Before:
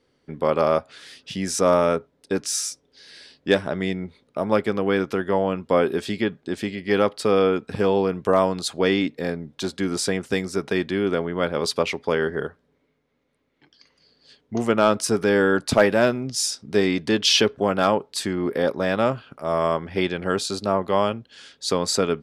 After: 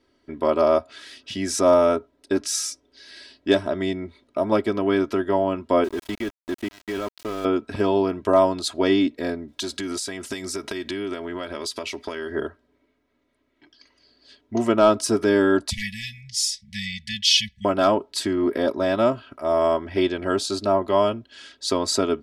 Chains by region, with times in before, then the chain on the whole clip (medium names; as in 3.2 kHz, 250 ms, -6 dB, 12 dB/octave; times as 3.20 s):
5.84–7.45 s: treble shelf 11 kHz -7 dB + level held to a coarse grid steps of 14 dB + small samples zeroed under -34.5 dBFS
9.48–12.32 s: treble shelf 3.2 kHz +11.5 dB + compression 10:1, threshold -26 dBFS
15.70–17.65 s: brick-wall FIR band-stop 200–1700 Hz + comb 4 ms, depth 46%
whole clip: treble shelf 7.1 kHz -4.5 dB; comb 3.1 ms, depth 74%; dynamic bell 1.9 kHz, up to -6 dB, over -35 dBFS, Q 1.3